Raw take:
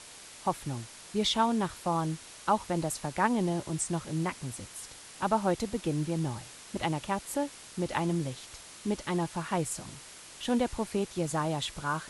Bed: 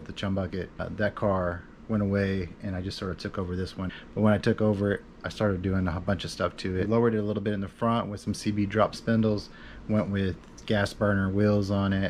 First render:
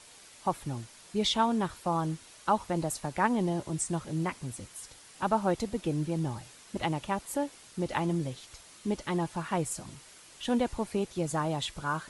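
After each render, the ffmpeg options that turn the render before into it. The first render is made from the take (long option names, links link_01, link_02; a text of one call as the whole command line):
ffmpeg -i in.wav -af "afftdn=noise_reduction=6:noise_floor=-49" out.wav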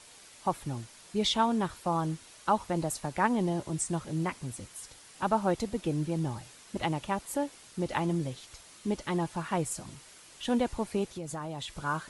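ffmpeg -i in.wav -filter_complex "[0:a]asettb=1/sr,asplit=3[link_01][link_02][link_03];[link_01]atrim=end=11.074[link_04];[link_02]atrim=start=11.07:end=11.78,asetpts=PTS-STARTPTS,afade=type=in:duration=0.004:curve=qsin,afade=type=out:start_time=0.706:duration=0.004:curve=qsin,acompressor=threshold=-36dB:ratio=3:attack=3.2:release=140:knee=1:detection=peak[link_05];[link_03]atrim=start=11.776[link_06];[link_04][link_05]acrossfade=duration=0.004:curve1=hsin:curve2=qsin[link_07];[link_07][link_06]acrossfade=duration=0.004:curve1=qsin:curve2=hsin" out.wav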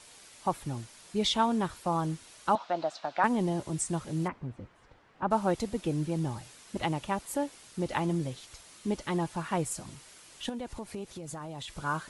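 ffmpeg -i in.wav -filter_complex "[0:a]asettb=1/sr,asplit=3[link_01][link_02][link_03];[link_01]atrim=end=2.554[link_04];[link_02]atrim=start=2.55:end=3.24,asetpts=PTS-STARTPTS,afade=type=in:duration=0.004:curve=qsin,afade=type=out:start_time=0.686:duration=0.004:curve=qsin,highpass=390,equalizer=frequency=420:width_type=q:width=4:gain=-8,equalizer=frequency=680:width_type=q:width=4:gain=9,equalizer=frequency=1400:width_type=q:width=4:gain=6,equalizer=frequency=2000:width_type=q:width=4:gain=-3,equalizer=frequency=3700:width_type=q:width=4:gain=4,lowpass=frequency=4900:width=0.5412,lowpass=frequency=4900:width=1.3066[link_05];[link_03]atrim=start=3.236[link_06];[link_04][link_05]acrossfade=duration=0.004:curve1=hsin:curve2=qsin[link_07];[link_07][link_06]acrossfade=duration=0.004:curve1=qsin:curve2=hsin,asplit=3[link_08][link_09][link_10];[link_08]afade=type=out:start_time=4.27:duration=0.02[link_11];[link_09]lowpass=1500,afade=type=in:start_time=4.27:duration=0.02,afade=type=out:start_time=5.3:duration=0.02[link_12];[link_10]afade=type=in:start_time=5.3:duration=0.02[link_13];[link_11][link_12][link_13]amix=inputs=3:normalize=0,asettb=1/sr,asplit=3[link_14][link_15][link_16];[link_14]atrim=end=10.494[link_17];[link_15]atrim=start=10.49:end=11.68,asetpts=PTS-STARTPTS,afade=type=in:duration=0.004:curve=qsin,afade=type=out:start_time=1.186:duration=0.004:curve=qsin,acompressor=threshold=-37dB:ratio=3:attack=3.2:release=140:knee=1:detection=peak[link_18];[link_16]atrim=start=11.676[link_19];[link_17][link_18]acrossfade=duration=0.004:curve1=hsin:curve2=qsin[link_20];[link_20][link_19]acrossfade=duration=0.004:curve1=qsin:curve2=hsin" out.wav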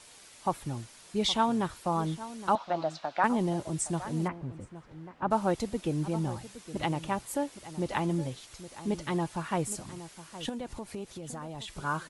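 ffmpeg -i in.wav -filter_complex "[0:a]asplit=2[link_01][link_02];[link_02]adelay=816.3,volume=-14dB,highshelf=frequency=4000:gain=-18.4[link_03];[link_01][link_03]amix=inputs=2:normalize=0" out.wav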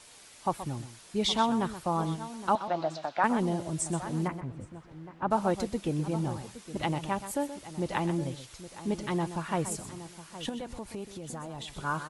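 ffmpeg -i in.wav -af "aecho=1:1:126:0.251" out.wav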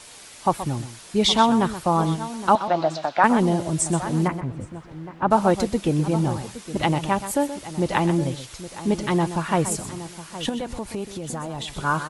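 ffmpeg -i in.wav -af "volume=9dB" out.wav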